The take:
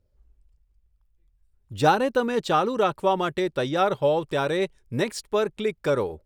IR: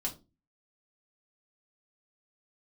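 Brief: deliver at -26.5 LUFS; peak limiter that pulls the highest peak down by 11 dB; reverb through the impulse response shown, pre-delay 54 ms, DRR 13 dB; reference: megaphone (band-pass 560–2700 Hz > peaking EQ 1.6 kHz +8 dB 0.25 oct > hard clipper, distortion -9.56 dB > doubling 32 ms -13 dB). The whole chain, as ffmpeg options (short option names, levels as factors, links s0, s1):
-filter_complex "[0:a]alimiter=limit=0.133:level=0:latency=1,asplit=2[s0][s1];[1:a]atrim=start_sample=2205,adelay=54[s2];[s1][s2]afir=irnorm=-1:irlink=0,volume=0.188[s3];[s0][s3]amix=inputs=2:normalize=0,highpass=560,lowpass=2700,equalizer=f=1600:t=o:w=0.25:g=8,asoftclip=type=hard:threshold=0.0422,asplit=2[s4][s5];[s5]adelay=32,volume=0.224[s6];[s4][s6]amix=inputs=2:normalize=0,volume=2.11"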